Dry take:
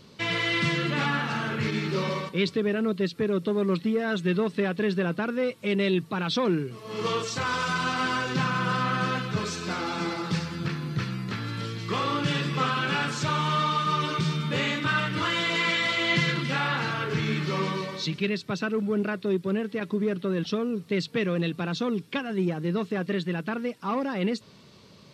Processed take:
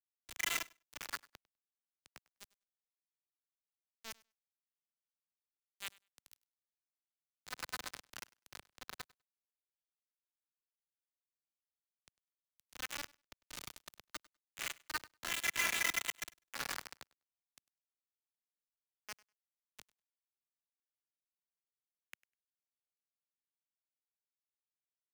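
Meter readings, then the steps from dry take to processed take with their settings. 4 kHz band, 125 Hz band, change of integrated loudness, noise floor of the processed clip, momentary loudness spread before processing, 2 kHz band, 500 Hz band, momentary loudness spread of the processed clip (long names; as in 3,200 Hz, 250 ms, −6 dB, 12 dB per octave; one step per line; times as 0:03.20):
−16.0 dB, −39.0 dB, −13.5 dB, below −85 dBFS, 6 LU, −15.0 dB, −32.5 dB, 24 LU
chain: adaptive Wiener filter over 41 samples
camcorder AGC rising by 8.6 dB per second
reverb reduction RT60 1.2 s
downward expander −48 dBFS
volume swells 473 ms
downward compressor 16 to 1, threshold −35 dBFS, peak gain reduction 12.5 dB
brickwall limiter −32.5 dBFS, peak gain reduction 8 dB
four-pole ladder band-pass 2,100 Hz, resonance 35%
bit-depth reduction 8 bits, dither none
repeating echo 100 ms, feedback 17%, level −22 dB
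multiband upward and downward expander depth 70%
level +13 dB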